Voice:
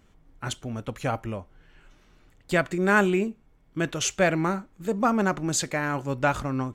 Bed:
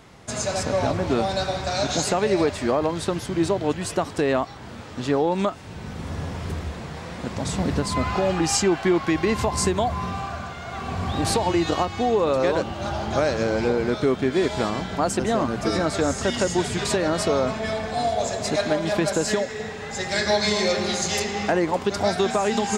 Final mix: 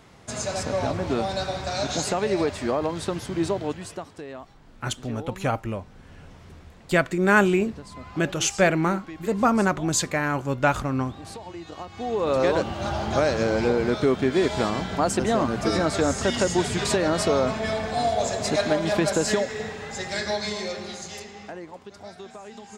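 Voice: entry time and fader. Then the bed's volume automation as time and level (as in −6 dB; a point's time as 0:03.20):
4.40 s, +2.5 dB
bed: 0:03.57 −3 dB
0:04.27 −17 dB
0:11.70 −17 dB
0:12.37 0 dB
0:19.59 0 dB
0:21.89 −19.5 dB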